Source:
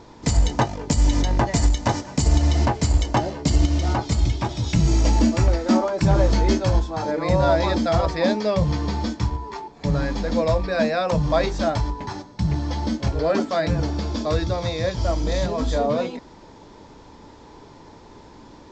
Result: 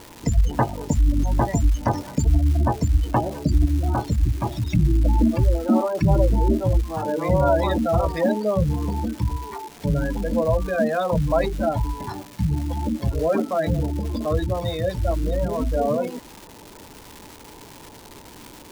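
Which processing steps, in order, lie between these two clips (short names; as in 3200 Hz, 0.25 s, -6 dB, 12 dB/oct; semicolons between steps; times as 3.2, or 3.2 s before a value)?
spectral gate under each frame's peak -20 dB strong; crackle 540/s -31 dBFS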